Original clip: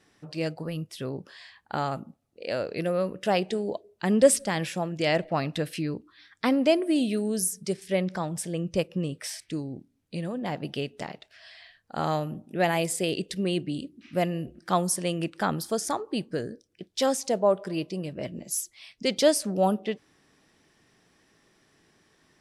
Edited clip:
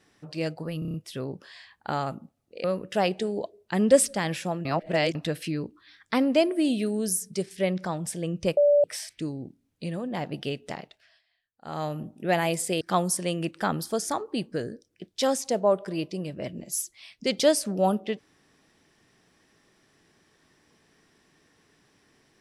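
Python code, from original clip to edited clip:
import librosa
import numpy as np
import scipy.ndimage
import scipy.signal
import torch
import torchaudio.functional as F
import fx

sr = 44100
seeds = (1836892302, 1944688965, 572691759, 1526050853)

y = fx.edit(x, sr, fx.stutter(start_s=0.79, slice_s=0.03, count=6),
    fx.cut(start_s=2.49, length_s=0.46),
    fx.reverse_span(start_s=4.96, length_s=0.5),
    fx.bleep(start_s=8.88, length_s=0.27, hz=581.0, db=-15.5),
    fx.fade_down_up(start_s=11.08, length_s=1.23, db=-23.5, fade_s=0.45),
    fx.cut(start_s=13.12, length_s=1.48), tone=tone)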